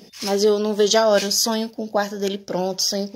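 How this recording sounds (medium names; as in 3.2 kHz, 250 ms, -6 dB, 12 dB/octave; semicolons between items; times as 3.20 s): noise floor -47 dBFS; spectral tilt -3.0 dB/octave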